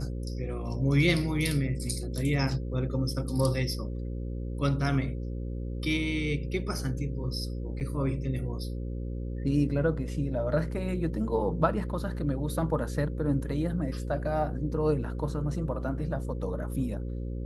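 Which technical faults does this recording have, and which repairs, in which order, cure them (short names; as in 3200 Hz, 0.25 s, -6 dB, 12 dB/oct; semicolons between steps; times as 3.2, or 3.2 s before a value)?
buzz 60 Hz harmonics 9 -34 dBFS
7.8–7.81 gap 8.5 ms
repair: de-hum 60 Hz, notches 9; interpolate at 7.8, 8.5 ms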